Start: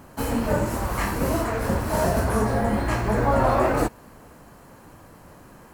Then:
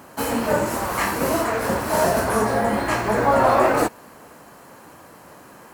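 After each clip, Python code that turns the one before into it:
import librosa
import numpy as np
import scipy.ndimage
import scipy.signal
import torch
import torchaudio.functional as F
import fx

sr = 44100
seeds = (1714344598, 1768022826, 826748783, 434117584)

y = fx.highpass(x, sr, hz=360.0, slope=6)
y = F.gain(torch.from_numpy(y), 5.5).numpy()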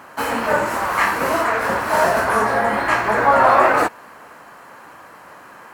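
y = fx.peak_eq(x, sr, hz=1500.0, db=12.5, octaves=2.7)
y = F.gain(torch.from_numpy(y), -5.0).numpy()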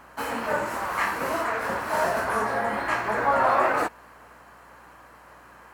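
y = fx.add_hum(x, sr, base_hz=60, snr_db=35)
y = F.gain(torch.from_numpy(y), -8.0).numpy()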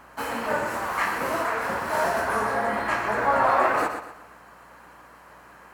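y = fx.echo_feedback(x, sr, ms=122, feedback_pct=34, wet_db=-8)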